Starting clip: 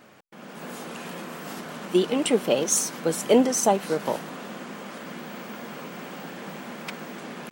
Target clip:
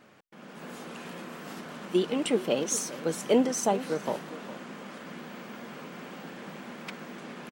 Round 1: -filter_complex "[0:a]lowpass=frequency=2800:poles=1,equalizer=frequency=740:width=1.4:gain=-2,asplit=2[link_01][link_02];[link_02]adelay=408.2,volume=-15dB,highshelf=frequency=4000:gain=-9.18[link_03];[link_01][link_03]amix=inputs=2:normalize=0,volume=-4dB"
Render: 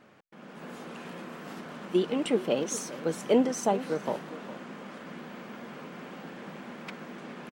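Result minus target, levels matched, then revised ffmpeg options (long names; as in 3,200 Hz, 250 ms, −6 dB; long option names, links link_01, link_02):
8,000 Hz band −4.0 dB
-filter_complex "[0:a]lowpass=frequency=6400:poles=1,equalizer=frequency=740:width=1.4:gain=-2,asplit=2[link_01][link_02];[link_02]adelay=408.2,volume=-15dB,highshelf=frequency=4000:gain=-9.18[link_03];[link_01][link_03]amix=inputs=2:normalize=0,volume=-4dB"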